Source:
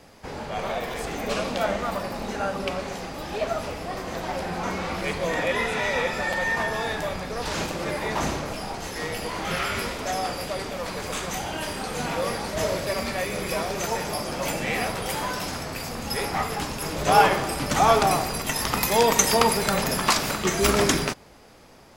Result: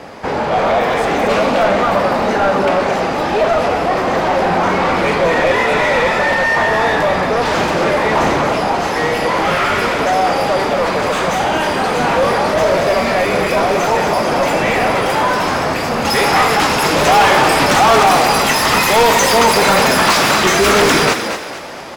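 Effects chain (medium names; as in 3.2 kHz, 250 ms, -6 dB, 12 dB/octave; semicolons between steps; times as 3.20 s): bass shelf 190 Hz +6 dB; overdrive pedal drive 31 dB, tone 1.1 kHz, clips at -2 dBFS, from 16.05 s tone 3 kHz; frequency-shifting echo 227 ms, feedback 40%, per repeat +65 Hz, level -8 dB; trim -1 dB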